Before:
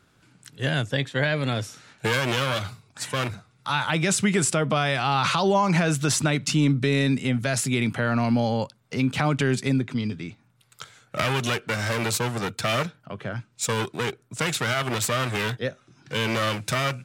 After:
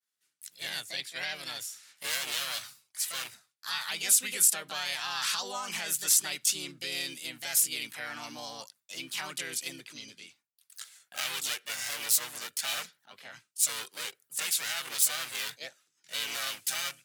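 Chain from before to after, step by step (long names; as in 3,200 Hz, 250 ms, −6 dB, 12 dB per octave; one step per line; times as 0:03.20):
first difference
downward expander −60 dBFS
pitch-shifted copies added +4 semitones 0 dB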